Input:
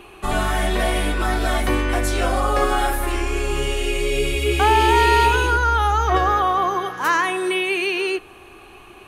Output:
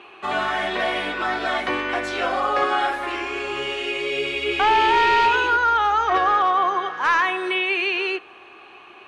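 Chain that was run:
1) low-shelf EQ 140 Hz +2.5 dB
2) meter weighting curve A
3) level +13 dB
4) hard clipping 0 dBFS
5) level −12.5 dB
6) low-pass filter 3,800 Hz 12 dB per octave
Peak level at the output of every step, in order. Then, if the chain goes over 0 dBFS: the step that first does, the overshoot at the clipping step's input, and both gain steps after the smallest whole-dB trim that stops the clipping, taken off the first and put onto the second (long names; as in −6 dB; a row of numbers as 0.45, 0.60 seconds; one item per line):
−4.0, −5.5, +7.5, 0.0, −12.5, −12.0 dBFS
step 3, 7.5 dB
step 3 +5 dB, step 5 −4.5 dB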